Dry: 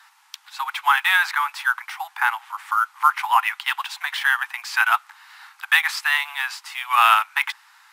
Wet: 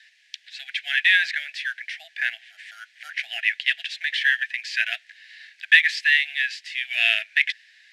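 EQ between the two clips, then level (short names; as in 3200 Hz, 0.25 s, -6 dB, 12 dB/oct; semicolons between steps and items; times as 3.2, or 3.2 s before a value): Chebyshev band-stop 640–1700 Hz, order 4; LPF 4400 Hz 12 dB/oct; +3.5 dB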